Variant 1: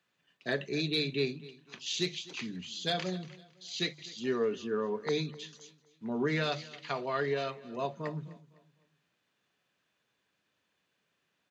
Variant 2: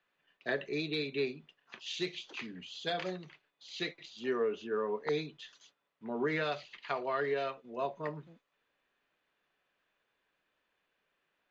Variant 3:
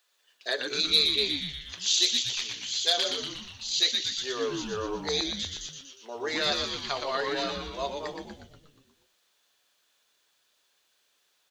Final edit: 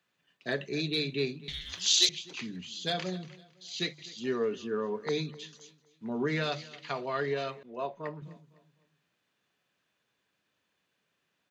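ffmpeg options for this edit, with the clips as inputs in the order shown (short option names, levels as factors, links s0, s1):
-filter_complex "[0:a]asplit=3[s0][s1][s2];[s0]atrim=end=1.482[s3];[2:a]atrim=start=1.478:end=2.092[s4];[s1]atrim=start=2.088:end=7.632[s5];[1:a]atrim=start=7.628:end=8.222[s6];[s2]atrim=start=8.218[s7];[s3][s4]acrossfade=d=0.004:c1=hsin:c2=hsin[s8];[s8][s5]acrossfade=d=0.004:c1=hsin:c2=hsin[s9];[s9][s6]acrossfade=d=0.004:c1=hsin:c2=hsin[s10];[s10][s7]acrossfade=d=0.004:c1=hsin:c2=hsin"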